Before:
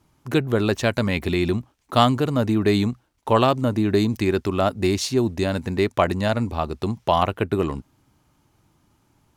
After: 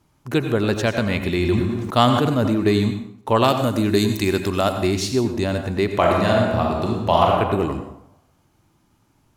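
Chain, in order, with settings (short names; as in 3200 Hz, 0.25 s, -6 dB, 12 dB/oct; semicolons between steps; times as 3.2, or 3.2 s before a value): 3.44–4.79 high shelf 3800 Hz +11.5 dB; 5.94–7.31 reverb throw, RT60 1.1 s, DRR -1 dB; reverb RT60 0.65 s, pre-delay 77 ms, DRR 7 dB; 1.31–2.51 sustainer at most 30 dB/s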